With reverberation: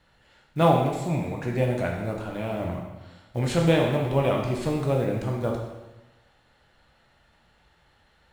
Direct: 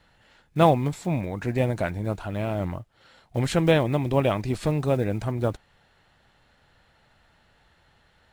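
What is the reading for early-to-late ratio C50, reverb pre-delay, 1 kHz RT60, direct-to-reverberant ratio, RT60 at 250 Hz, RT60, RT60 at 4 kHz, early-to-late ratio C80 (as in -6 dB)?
3.5 dB, 6 ms, 1.1 s, 0.0 dB, 1.1 s, 1.1 s, 1.0 s, 5.5 dB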